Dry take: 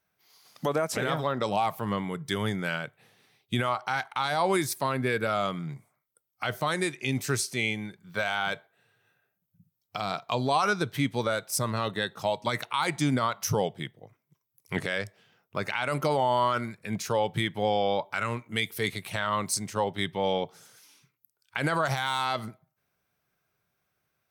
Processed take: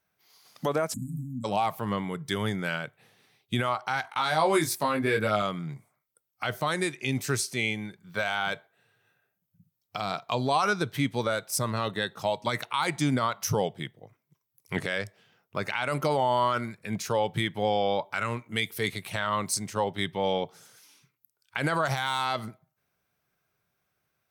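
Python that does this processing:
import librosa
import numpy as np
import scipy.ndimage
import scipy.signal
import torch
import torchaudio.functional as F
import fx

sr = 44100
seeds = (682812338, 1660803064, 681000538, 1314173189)

y = fx.spec_erase(x, sr, start_s=0.93, length_s=0.51, low_hz=290.0, high_hz=6600.0)
y = fx.doubler(y, sr, ms=19.0, db=-3.0, at=(4.02, 5.42))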